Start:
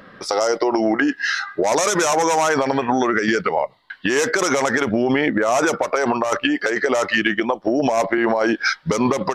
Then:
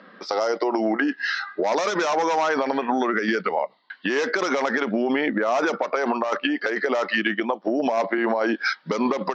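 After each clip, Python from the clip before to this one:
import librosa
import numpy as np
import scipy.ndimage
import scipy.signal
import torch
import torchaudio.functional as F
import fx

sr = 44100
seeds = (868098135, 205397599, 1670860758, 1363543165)

y = scipy.signal.sosfilt(scipy.signal.ellip(3, 1.0, 40, [200.0, 4800.0], 'bandpass', fs=sr, output='sos'), x)
y = F.gain(torch.from_numpy(y), -3.5).numpy()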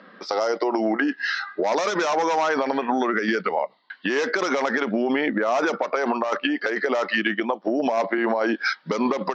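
y = x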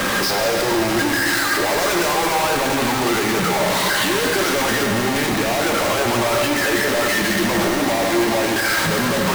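y = np.sign(x) * np.sqrt(np.mean(np.square(x)))
y = fx.rev_fdn(y, sr, rt60_s=3.8, lf_ratio=1.0, hf_ratio=0.95, size_ms=51.0, drr_db=1.0)
y = F.gain(torch.from_numpy(y), 2.5).numpy()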